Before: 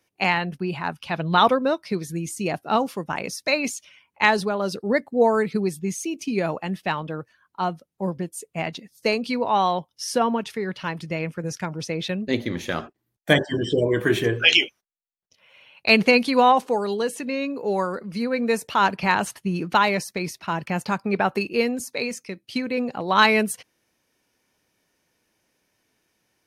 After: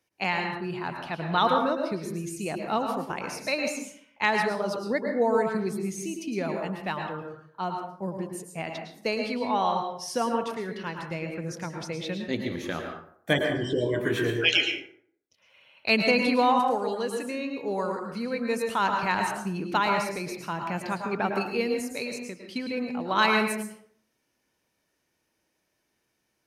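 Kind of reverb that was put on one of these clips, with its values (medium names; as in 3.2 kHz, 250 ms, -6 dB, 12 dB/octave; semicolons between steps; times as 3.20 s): plate-style reverb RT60 0.61 s, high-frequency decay 0.55×, pre-delay 95 ms, DRR 3 dB; trim -6.5 dB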